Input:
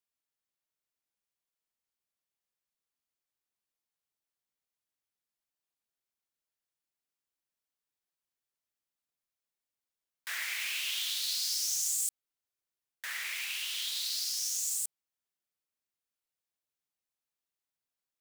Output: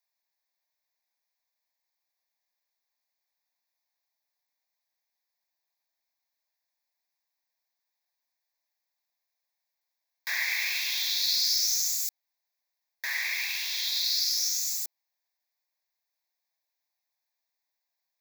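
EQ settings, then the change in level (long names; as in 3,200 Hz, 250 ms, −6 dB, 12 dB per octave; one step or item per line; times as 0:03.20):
high-pass filter 310 Hz 24 dB per octave
dynamic equaliser 9,100 Hz, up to −5 dB, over −48 dBFS, Q 2.9
phaser with its sweep stopped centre 2,000 Hz, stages 8
+9.0 dB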